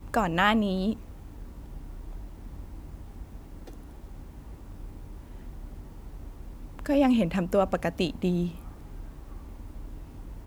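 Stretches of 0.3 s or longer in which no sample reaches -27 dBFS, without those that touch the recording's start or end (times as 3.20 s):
0.93–6.79 s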